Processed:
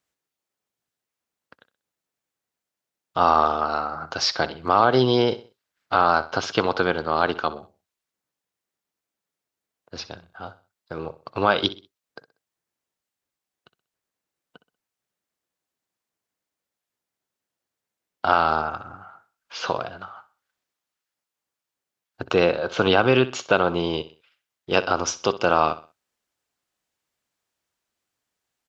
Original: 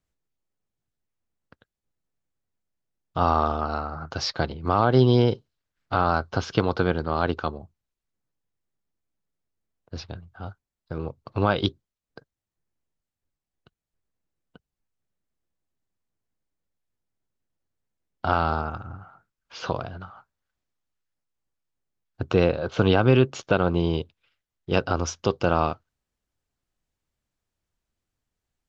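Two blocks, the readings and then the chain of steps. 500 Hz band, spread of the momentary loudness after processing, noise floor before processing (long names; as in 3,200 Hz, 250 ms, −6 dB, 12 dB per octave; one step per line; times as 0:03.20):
+2.0 dB, 21 LU, below −85 dBFS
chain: high-pass filter 580 Hz 6 dB per octave
on a send: repeating echo 63 ms, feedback 33%, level −16 dB
on the sum: level +6 dB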